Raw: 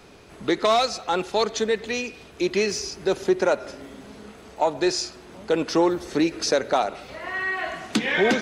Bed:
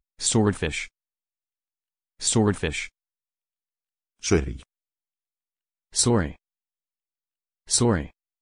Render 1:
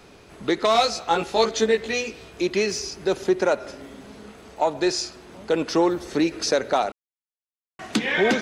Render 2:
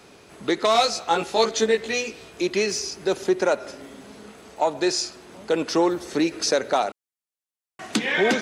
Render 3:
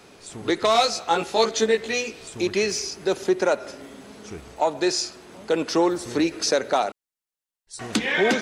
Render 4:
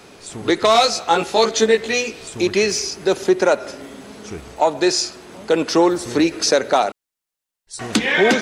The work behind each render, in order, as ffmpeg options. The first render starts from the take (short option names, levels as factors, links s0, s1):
-filter_complex "[0:a]asettb=1/sr,asplit=3[s0][s1][s2];[s0]atrim=end=0.734[s3];[s1]atrim=start=0.73:end=2.42,asetpts=PTS-STARTPTS,afade=t=in:d=0.004:c=qsin,afade=t=out:st=1.686:d=0.004:c=qsin,asplit=2[s4][s5];[s5]adelay=18,volume=0.794[s6];[s4][s6]amix=inputs=2:normalize=0,atrim=end_sample=74529[s7];[s2]atrim=start=2.416[s8];[s3][s7]acrossfade=d=0.004:c1=hsin:c2=qsin[s9];[s9][s8]acrossfade=d=0.004:c1=qsin:c2=hsin,asplit=3[s10][s11][s12];[s10]atrim=end=6.92,asetpts=PTS-STARTPTS,afade=t=out:st=6.916:d=0.004:c=hsin[s13];[s11]atrim=start=6.92:end=7.79,asetpts=PTS-STARTPTS,volume=0[s14];[s12]atrim=start=7.79,asetpts=PTS-STARTPTS,afade=t=in:d=0.004:c=hsin[s15];[s13][s14][s15]concat=n=3:v=0:a=1"
-af "highpass=f=130:p=1,equalizer=f=9100:w=0.88:g=4"
-filter_complex "[1:a]volume=0.126[s0];[0:a][s0]amix=inputs=2:normalize=0"
-af "volume=1.88,alimiter=limit=0.708:level=0:latency=1"